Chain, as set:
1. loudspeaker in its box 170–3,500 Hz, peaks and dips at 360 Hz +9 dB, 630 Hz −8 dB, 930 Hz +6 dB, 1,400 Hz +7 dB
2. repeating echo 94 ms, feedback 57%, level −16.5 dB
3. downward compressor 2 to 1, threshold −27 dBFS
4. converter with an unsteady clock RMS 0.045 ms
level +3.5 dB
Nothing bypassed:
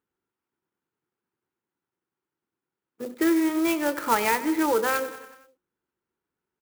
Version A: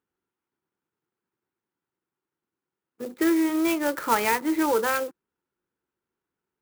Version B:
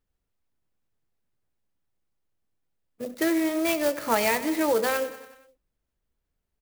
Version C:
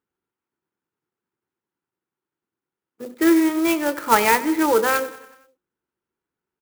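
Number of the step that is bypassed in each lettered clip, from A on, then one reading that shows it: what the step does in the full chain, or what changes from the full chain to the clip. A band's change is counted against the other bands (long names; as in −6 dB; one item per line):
2, change in momentary loudness spread −4 LU
1, 1 kHz band −3.5 dB
3, average gain reduction 3.5 dB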